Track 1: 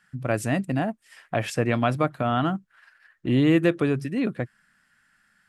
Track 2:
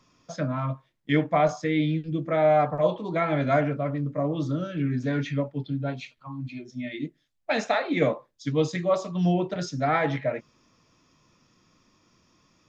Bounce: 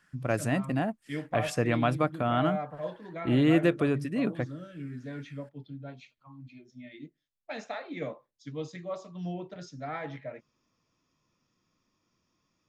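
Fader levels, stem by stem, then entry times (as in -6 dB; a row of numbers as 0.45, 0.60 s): -3.5, -13.0 dB; 0.00, 0.00 s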